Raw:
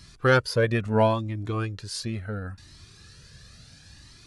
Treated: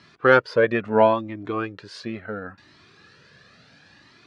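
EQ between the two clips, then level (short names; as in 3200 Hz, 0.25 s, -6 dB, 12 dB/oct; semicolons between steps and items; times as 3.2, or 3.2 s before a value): BPF 260–2500 Hz; +5.5 dB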